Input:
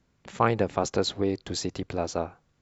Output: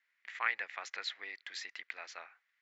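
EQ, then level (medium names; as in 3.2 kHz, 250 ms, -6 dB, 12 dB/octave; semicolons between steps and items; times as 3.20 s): ladder band-pass 2.1 kHz, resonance 70%; +7.0 dB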